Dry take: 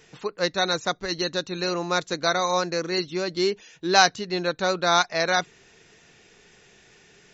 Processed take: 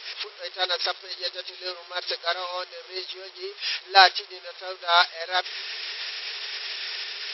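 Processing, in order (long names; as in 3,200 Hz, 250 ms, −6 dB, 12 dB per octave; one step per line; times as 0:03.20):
spike at every zero crossing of −11 dBFS
noise gate −16 dBFS, range −17 dB
in parallel at −9.5 dB: bit-depth reduction 6 bits, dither triangular
on the sum: brick-wall band-pass 360–5,600 Hz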